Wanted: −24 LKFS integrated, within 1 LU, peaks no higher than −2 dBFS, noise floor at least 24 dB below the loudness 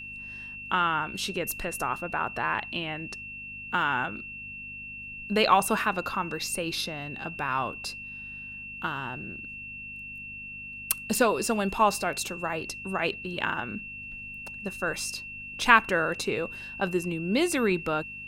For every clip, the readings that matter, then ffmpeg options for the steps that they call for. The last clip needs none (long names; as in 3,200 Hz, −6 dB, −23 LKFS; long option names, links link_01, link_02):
mains hum 50 Hz; hum harmonics up to 250 Hz; level of the hum −51 dBFS; interfering tone 2,700 Hz; level of the tone −38 dBFS; integrated loudness −29.0 LKFS; sample peak −3.5 dBFS; target loudness −24.0 LKFS
→ -af "bandreject=frequency=50:width_type=h:width=4,bandreject=frequency=100:width_type=h:width=4,bandreject=frequency=150:width_type=h:width=4,bandreject=frequency=200:width_type=h:width=4,bandreject=frequency=250:width_type=h:width=4"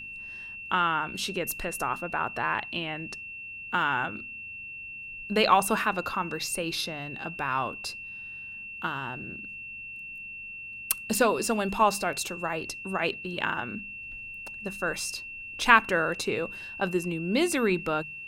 mains hum none found; interfering tone 2,700 Hz; level of the tone −38 dBFS
→ -af "bandreject=frequency=2700:width=30"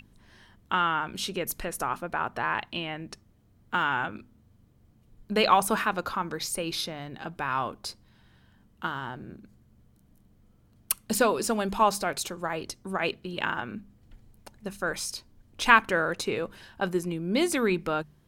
interfering tone none found; integrated loudness −28.0 LKFS; sample peak −3.5 dBFS; target loudness −24.0 LKFS
→ -af "volume=4dB,alimiter=limit=-2dB:level=0:latency=1"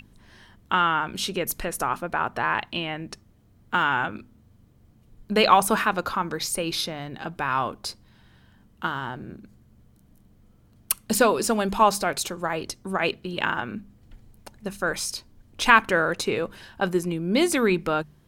integrated loudness −24.5 LKFS; sample peak −2.0 dBFS; background noise floor −58 dBFS